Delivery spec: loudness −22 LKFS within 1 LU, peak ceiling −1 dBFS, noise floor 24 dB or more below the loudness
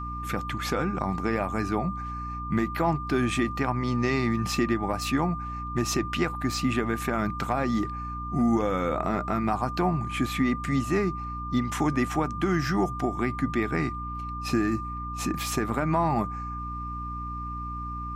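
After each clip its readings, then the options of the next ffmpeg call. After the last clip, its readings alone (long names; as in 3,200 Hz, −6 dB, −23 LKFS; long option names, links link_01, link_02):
mains hum 60 Hz; hum harmonics up to 300 Hz; level of the hum −34 dBFS; interfering tone 1,200 Hz; level of the tone −34 dBFS; integrated loudness −28.0 LKFS; sample peak −10.5 dBFS; target loudness −22.0 LKFS
→ -af "bandreject=frequency=60:width_type=h:width=6,bandreject=frequency=120:width_type=h:width=6,bandreject=frequency=180:width_type=h:width=6,bandreject=frequency=240:width_type=h:width=6,bandreject=frequency=300:width_type=h:width=6"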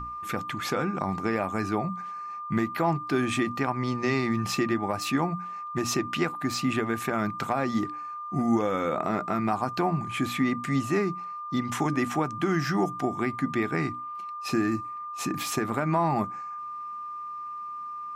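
mains hum none found; interfering tone 1,200 Hz; level of the tone −34 dBFS
→ -af "bandreject=frequency=1200:width=30"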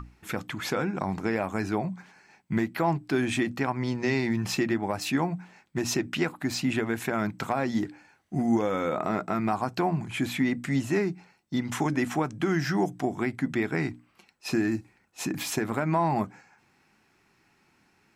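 interfering tone none found; integrated loudness −29.0 LKFS; sample peak −11.5 dBFS; target loudness −22.0 LKFS
→ -af "volume=7dB"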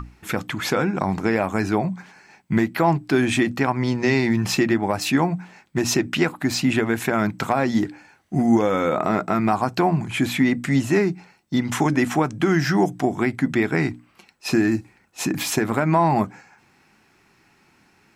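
integrated loudness −22.0 LKFS; sample peak −4.5 dBFS; background noise floor −59 dBFS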